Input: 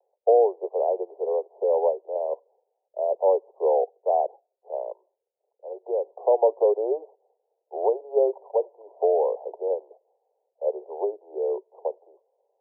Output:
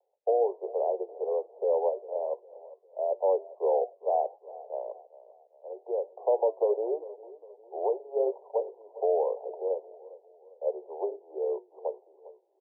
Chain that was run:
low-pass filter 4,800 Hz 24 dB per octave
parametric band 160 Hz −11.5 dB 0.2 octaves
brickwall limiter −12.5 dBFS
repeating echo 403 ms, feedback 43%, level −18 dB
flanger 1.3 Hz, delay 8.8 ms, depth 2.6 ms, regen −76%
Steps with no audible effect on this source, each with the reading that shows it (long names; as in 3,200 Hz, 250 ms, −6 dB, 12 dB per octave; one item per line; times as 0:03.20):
low-pass filter 4,800 Hz: nothing at its input above 1,000 Hz
parametric band 160 Hz: nothing at its input below 320 Hz